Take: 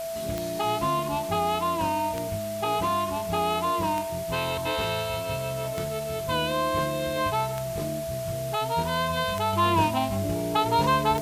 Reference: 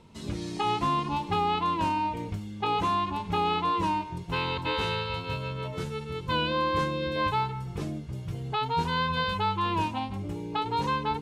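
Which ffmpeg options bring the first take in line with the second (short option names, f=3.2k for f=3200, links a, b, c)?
-af "adeclick=t=4,bandreject=f=660:w=30,afwtdn=0.0079,asetnsamples=n=441:p=0,asendcmd='9.53 volume volume -5.5dB',volume=0dB"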